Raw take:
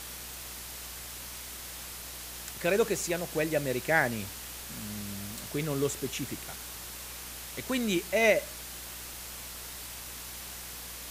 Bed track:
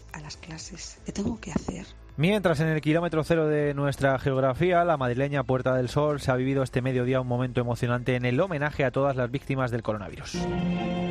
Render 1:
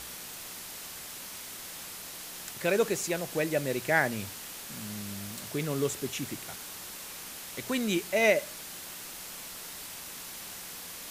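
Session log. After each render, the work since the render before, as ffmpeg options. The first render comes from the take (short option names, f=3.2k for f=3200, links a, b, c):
-af "bandreject=f=60:t=h:w=4,bandreject=f=120:t=h:w=4"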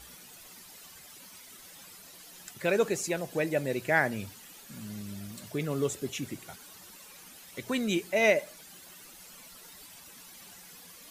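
-af "afftdn=nr=12:nf=-43"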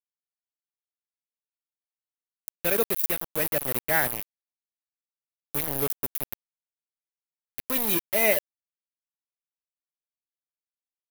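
-af "aeval=exprs='val(0)*gte(abs(val(0)),0.0398)':c=same,aexciter=amount=9.5:drive=2.5:freq=10k"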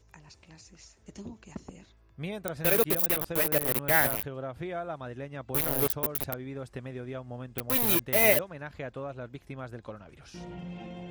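-filter_complex "[1:a]volume=-13.5dB[a];[0:a][a]amix=inputs=2:normalize=0"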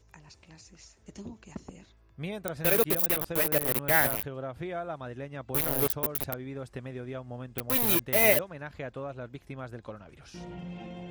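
-af anull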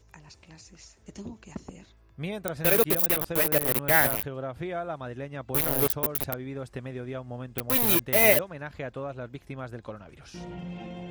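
-af "volume=2.5dB"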